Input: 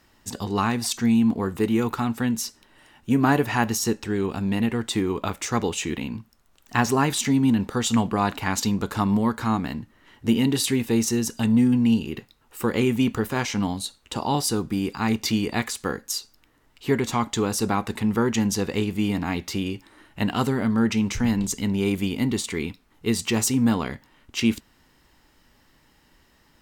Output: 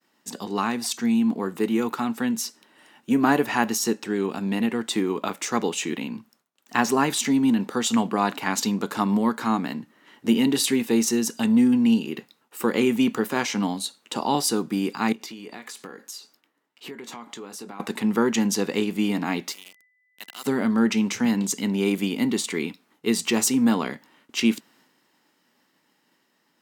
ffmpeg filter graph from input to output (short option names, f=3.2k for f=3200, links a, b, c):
-filter_complex "[0:a]asettb=1/sr,asplit=3[a][b][c];[a]atrim=end=15.124[d];[b]atrim=start=15.12:end=17.8,asetpts=PTS-STARTPTS,afade=t=in:d=0.004:c=qsin,afade=t=out:st=2.676:d=0.004:c=qsin,bass=f=250:g=-5,treble=f=4k:g=-3,acompressor=threshold=-35dB:ratio=20:attack=3.2:release=140:knee=1:detection=peak,asplit=2[e][f];[f]adelay=21,volume=-12.5dB[g];[e][g]amix=inputs=2:normalize=0,atrim=end_sample=118188[h];[c]atrim=start=17.796[i];[d][h]acrossfade=d=0.004:c1=hsin:c2=qsin[j];[j][i]acrossfade=d=0.004:c1=qsin:c2=hsin,asettb=1/sr,asplit=3[k][l][m];[k]atrim=end=19.524[n];[l]atrim=start=19.52:end=20.46,asetpts=PTS-STARTPTS,afade=t=in:d=0.004:c=qsin,afade=t=out:st=0.936:d=0.004:c=qsin,aderivative,aeval=exprs='val(0)*gte(abs(val(0)),0.00944)':c=same,aeval=exprs='val(0)+0.00112*sin(2*PI*2000*n/s)':c=same[o];[m]atrim=start=20.456[p];[n][o]acrossfade=d=0.004:c1=hsin:c2=qsin[q];[q][p]acrossfade=d=0.004:c1=qsin:c2=hsin,highpass=f=180:w=0.5412,highpass=f=180:w=1.3066,agate=range=-33dB:threshold=-56dB:ratio=3:detection=peak,dynaudnorm=f=540:g=7:m=3dB,volume=-1.5dB"